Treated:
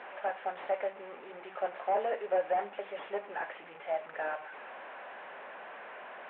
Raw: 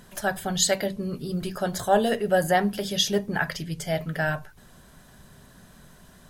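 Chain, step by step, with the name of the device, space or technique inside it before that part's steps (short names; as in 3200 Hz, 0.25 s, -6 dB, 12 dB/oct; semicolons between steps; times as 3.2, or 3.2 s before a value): digital answering machine (BPF 390–3400 Hz; delta modulation 16 kbps, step -34.5 dBFS; speaker cabinet 470–3400 Hz, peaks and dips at 540 Hz +5 dB, 810 Hz +6 dB, 3100 Hz -4 dB); gain -6 dB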